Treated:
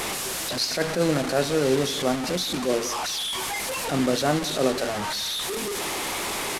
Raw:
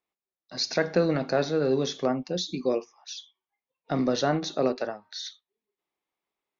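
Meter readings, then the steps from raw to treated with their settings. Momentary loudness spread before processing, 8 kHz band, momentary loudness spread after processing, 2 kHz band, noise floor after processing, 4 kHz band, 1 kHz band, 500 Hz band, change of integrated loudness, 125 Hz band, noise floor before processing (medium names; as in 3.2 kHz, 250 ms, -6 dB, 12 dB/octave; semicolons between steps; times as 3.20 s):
15 LU, no reading, 5 LU, +7.5 dB, -30 dBFS, +8.0 dB, +5.5 dB, +2.0 dB, +2.5 dB, +2.5 dB, under -85 dBFS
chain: one-bit delta coder 64 kbps, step -25 dBFS; delay 181 ms -17 dB; attacks held to a fixed rise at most 140 dB/s; trim +2.5 dB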